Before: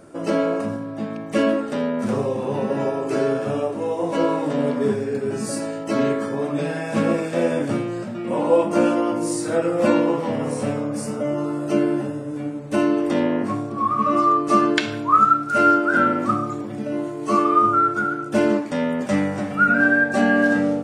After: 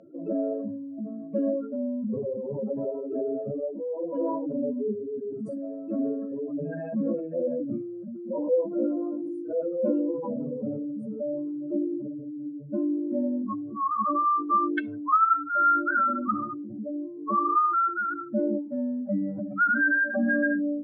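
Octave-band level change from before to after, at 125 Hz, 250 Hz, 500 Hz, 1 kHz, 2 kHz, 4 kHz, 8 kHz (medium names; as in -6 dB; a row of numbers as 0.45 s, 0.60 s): -12.5 dB, -7.0 dB, -8.5 dB, -6.0 dB, -6.0 dB, under -25 dB, under -40 dB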